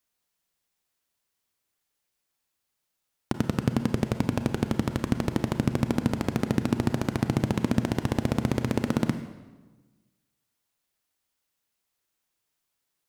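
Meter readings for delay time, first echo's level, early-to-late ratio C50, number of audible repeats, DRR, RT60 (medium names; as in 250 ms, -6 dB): no echo, no echo, 10.0 dB, no echo, 8.5 dB, 1.3 s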